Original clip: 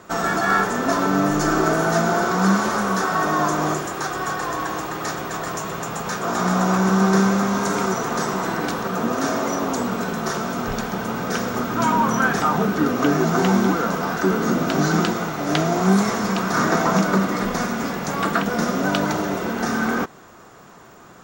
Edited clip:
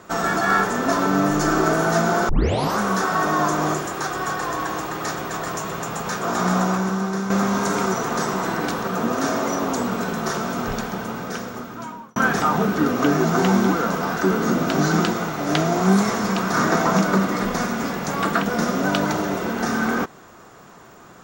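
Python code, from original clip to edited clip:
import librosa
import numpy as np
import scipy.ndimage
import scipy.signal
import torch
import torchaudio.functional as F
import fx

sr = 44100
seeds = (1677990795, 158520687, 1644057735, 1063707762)

y = fx.edit(x, sr, fx.tape_start(start_s=2.29, length_s=0.49),
    fx.fade_out_to(start_s=6.57, length_s=0.73, curve='qua', floor_db=-9.0),
    fx.fade_out_span(start_s=10.64, length_s=1.52), tone=tone)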